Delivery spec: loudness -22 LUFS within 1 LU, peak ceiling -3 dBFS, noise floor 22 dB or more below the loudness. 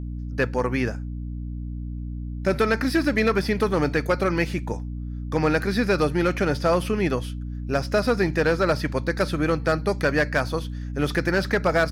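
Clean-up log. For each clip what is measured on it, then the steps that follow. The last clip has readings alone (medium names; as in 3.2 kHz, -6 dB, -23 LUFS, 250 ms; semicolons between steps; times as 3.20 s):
clipped samples 0.7%; clipping level -13.0 dBFS; hum 60 Hz; highest harmonic 300 Hz; hum level -29 dBFS; loudness -24.0 LUFS; peak level -13.0 dBFS; loudness target -22.0 LUFS
-> clip repair -13 dBFS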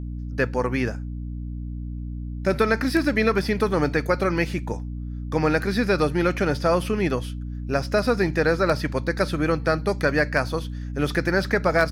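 clipped samples 0.0%; hum 60 Hz; highest harmonic 300 Hz; hum level -29 dBFS
-> hum notches 60/120/180/240/300 Hz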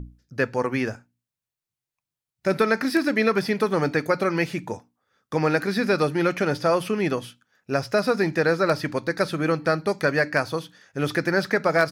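hum not found; loudness -23.5 LUFS; peak level -6.0 dBFS; loudness target -22.0 LUFS
-> trim +1.5 dB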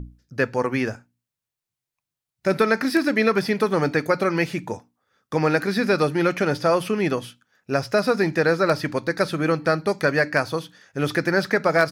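loudness -22.0 LUFS; peak level -4.5 dBFS; noise floor -87 dBFS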